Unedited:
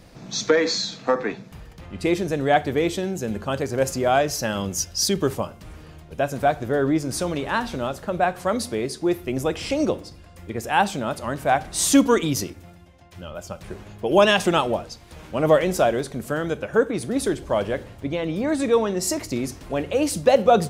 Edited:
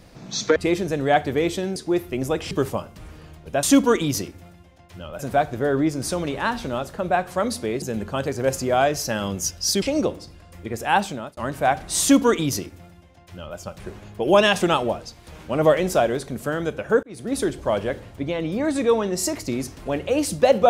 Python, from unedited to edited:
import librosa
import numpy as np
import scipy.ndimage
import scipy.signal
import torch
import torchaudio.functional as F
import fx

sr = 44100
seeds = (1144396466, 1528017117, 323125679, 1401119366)

y = fx.edit(x, sr, fx.cut(start_s=0.56, length_s=1.4),
    fx.swap(start_s=3.16, length_s=2.0, other_s=8.91, other_length_s=0.75),
    fx.fade_out_span(start_s=10.75, length_s=0.46, curve='qsin'),
    fx.duplicate(start_s=11.85, length_s=1.56, to_s=6.28),
    fx.fade_in_span(start_s=16.87, length_s=0.35), tone=tone)